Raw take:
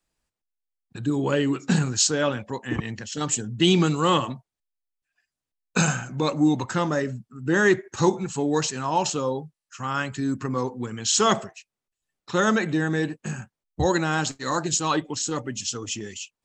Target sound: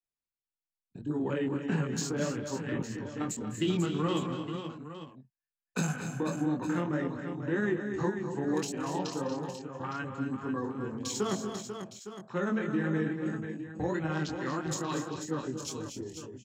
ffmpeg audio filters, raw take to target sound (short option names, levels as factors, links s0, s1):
-filter_complex "[0:a]afwtdn=0.02,tremolo=f=19:d=0.51,flanger=delay=18.5:depth=5.2:speed=1.7,acrossover=split=130|420|1600|7000[s0][s1][s2][s3][s4];[s0]acompressor=threshold=0.00282:ratio=4[s5];[s1]acompressor=threshold=0.0398:ratio=4[s6];[s2]acompressor=threshold=0.01:ratio=4[s7];[s3]acompressor=threshold=0.00708:ratio=4[s8];[s4]acompressor=threshold=0.00708:ratio=4[s9];[s5][s6][s7][s8][s9]amix=inputs=5:normalize=0,asplit=2[s10][s11];[s11]aecho=0:1:203|235|245|264|492|861:0.126|0.316|0.119|0.211|0.376|0.237[s12];[s10][s12]amix=inputs=2:normalize=0"